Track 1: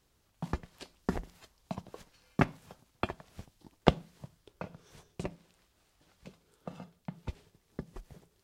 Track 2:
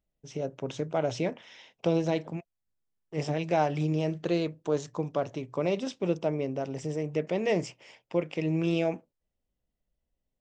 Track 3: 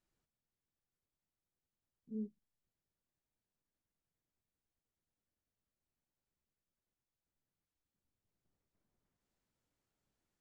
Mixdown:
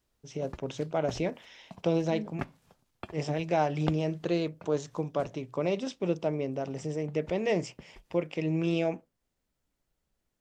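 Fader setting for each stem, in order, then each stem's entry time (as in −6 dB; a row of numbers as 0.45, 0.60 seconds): −9.0, −1.0, +3.0 decibels; 0.00, 0.00, 0.00 seconds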